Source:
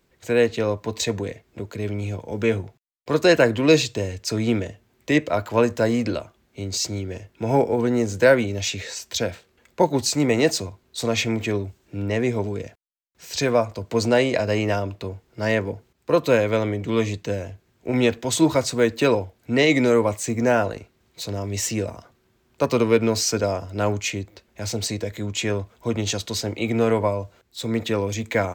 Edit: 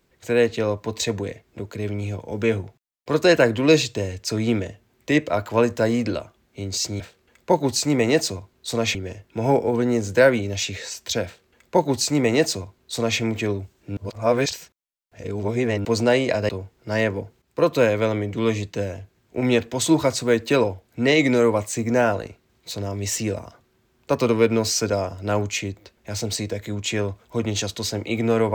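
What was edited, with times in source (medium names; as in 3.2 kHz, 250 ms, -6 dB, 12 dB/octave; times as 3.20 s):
9.30–11.25 s: copy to 7.00 s
12.02–13.90 s: reverse
14.54–15.00 s: delete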